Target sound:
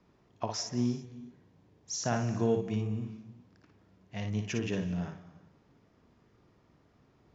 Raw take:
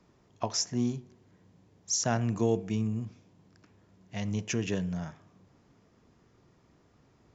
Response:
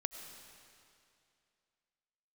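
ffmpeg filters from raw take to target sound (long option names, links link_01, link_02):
-filter_complex "[0:a]lowpass=5000,asplit=2[link_01][link_02];[1:a]atrim=start_sample=2205,afade=type=out:start_time=0.41:duration=0.01,atrim=end_sample=18522,adelay=57[link_03];[link_02][link_03]afir=irnorm=-1:irlink=0,volume=-4.5dB[link_04];[link_01][link_04]amix=inputs=2:normalize=0,volume=-2.5dB"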